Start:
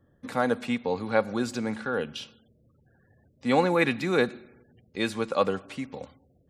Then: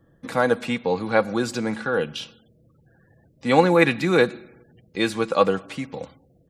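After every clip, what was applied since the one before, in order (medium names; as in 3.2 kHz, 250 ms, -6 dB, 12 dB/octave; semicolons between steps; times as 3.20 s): comb 6.1 ms, depth 34%; trim +5 dB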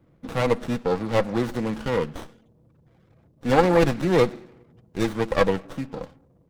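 sliding maximum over 17 samples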